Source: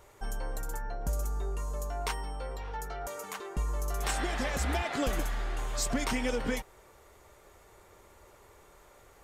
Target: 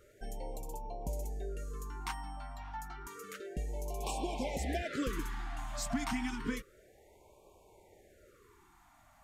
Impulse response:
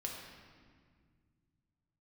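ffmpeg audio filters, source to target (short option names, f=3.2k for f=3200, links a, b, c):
-af "equalizer=f=430:w=0.31:g=6,afftfilt=real='re*(1-between(b*sr/1024,420*pow(1600/420,0.5+0.5*sin(2*PI*0.3*pts/sr))/1.41,420*pow(1600/420,0.5+0.5*sin(2*PI*0.3*pts/sr))*1.41))':imag='im*(1-between(b*sr/1024,420*pow(1600/420,0.5+0.5*sin(2*PI*0.3*pts/sr))/1.41,420*pow(1600/420,0.5+0.5*sin(2*PI*0.3*pts/sr))*1.41))':win_size=1024:overlap=0.75,volume=-7.5dB"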